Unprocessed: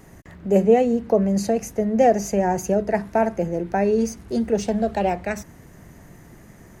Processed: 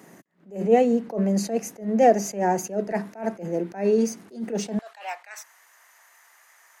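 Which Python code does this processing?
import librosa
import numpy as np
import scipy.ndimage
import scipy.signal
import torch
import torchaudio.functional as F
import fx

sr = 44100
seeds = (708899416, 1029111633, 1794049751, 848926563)

y = fx.highpass(x, sr, hz=fx.steps((0.0, 180.0), (4.79, 930.0)), slope=24)
y = fx.attack_slew(y, sr, db_per_s=170.0)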